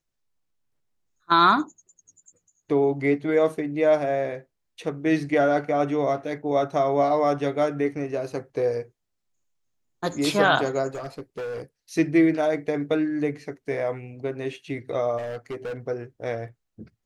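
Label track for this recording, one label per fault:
10.940000	11.620000	clipping −29 dBFS
15.170000	15.770000	clipping −28.5 dBFS

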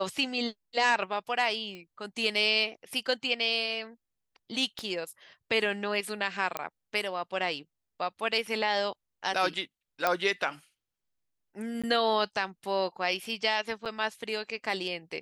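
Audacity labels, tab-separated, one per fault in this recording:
1.750000	1.750000	click −29 dBFS
4.790000	4.790000	click −22 dBFS
6.570000	6.570000	click −15 dBFS
10.070000	10.070000	click −11 dBFS
11.820000	11.840000	drop-out 16 ms
13.850000	13.860000	drop-out 7.6 ms

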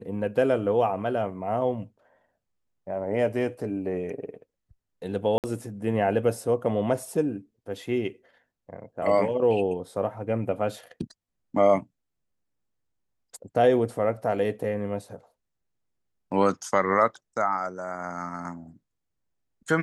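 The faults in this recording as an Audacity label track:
5.380000	5.440000	drop-out 58 ms

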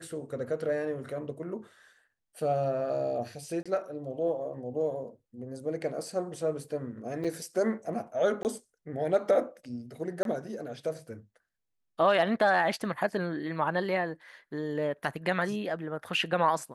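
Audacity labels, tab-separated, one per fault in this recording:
3.630000	3.660000	drop-out 26 ms
7.240000	7.250000	drop-out 5.7 ms
8.430000	8.450000	drop-out 19 ms
10.230000	10.250000	drop-out 22 ms

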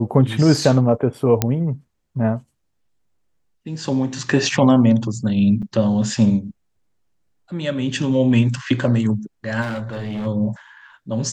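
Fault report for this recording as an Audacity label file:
1.420000	1.420000	click −2 dBFS
5.620000	5.630000	drop-out 6.8 ms
9.610000	10.270000	clipping −23 dBFS

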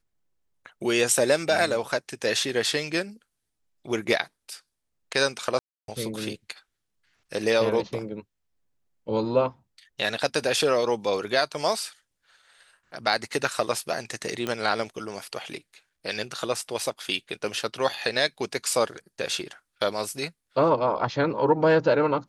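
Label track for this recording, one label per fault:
5.590000	5.880000	drop-out 292 ms
14.470000	14.470000	click −14 dBFS

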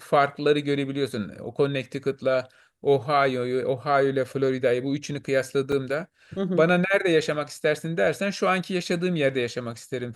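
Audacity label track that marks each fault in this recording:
5.720000	5.720000	drop-out 4.7 ms

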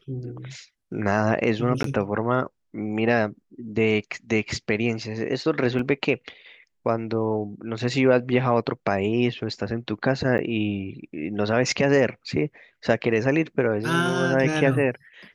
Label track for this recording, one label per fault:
1.830000	1.840000	drop-out 13 ms
5.790000	5.790000	drop-out 3.5 ms
10.380000	10.390000	drop-out 9.7 ms

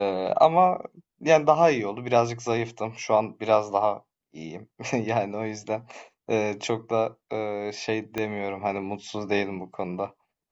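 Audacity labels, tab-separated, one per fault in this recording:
8.180000	8.180000	click −14 dBFS

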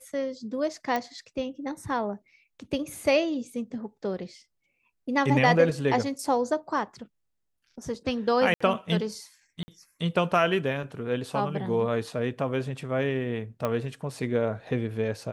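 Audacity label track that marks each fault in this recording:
0.960000	0.960000	click −16 dBFS
8.540000	8.610000	drop-out 65 ms
9.630000	9.680000	drop-out 50 ms
13.650000	13.650000	click −15 dBFS

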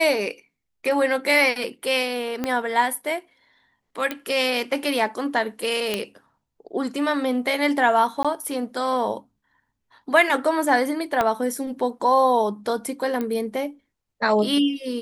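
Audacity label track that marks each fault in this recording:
2.440000	2.440000	click −11 dBFS
4.110000	4.110000	click −12 dBFS
5.940000	5.940000	click −9 dBFS
8.230000	8.250000	drop-out 16 ms
11.210000	11.210000	click −8 dBFS
13.210000	13.210000	click −15 dBFS

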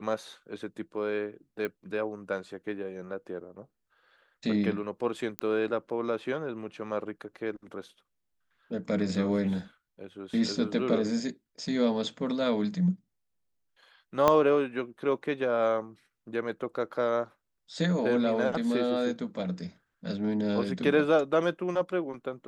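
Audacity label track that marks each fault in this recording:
1.650000	1.650000	click −21 dBFS
5.390000	5.390000	click −13 dBFS
14.280000	14.280000	click −9 dBFS

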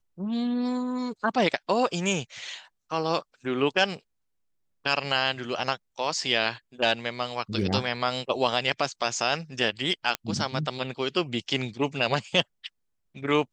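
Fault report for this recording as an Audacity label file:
10.150000	10.150000	click −11 dBFS

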